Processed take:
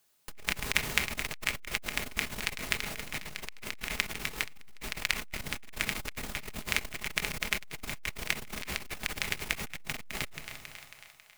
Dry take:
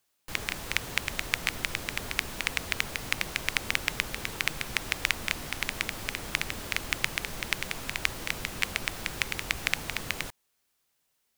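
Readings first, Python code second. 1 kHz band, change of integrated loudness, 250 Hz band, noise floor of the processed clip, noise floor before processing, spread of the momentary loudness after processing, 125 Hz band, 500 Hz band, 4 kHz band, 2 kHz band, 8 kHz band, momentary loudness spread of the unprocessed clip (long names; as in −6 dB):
−3.0 dB, −3.0 dB, −2.0 dB, −56 dBFS, −76 dBFS, 10 LU, −3.0 dB, −2.5 dB, −3.0 dB, −3.0 dB, −2.0 dB, 4 LU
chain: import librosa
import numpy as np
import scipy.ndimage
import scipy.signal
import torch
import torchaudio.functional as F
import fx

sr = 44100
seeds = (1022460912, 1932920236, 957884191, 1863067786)

y = fx.high_shelf(x, sr, hz=7100.0, db=3.0)
y = fx.echo_split(y, sr, split_hz=630.0, low_ms=153, high_ms=273, feedback_pct=52, wet_db=-12.0)
y = fx.rider(y, sr, range_db=4, speed_s=2.0)
y = fx.room_shoebox(y, sr, seeds[0], volume_m3=840.0, walls='furnished', distance_m=1.4)
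y = fx.transformer_sat(y, sr, knee_hz=1400.0)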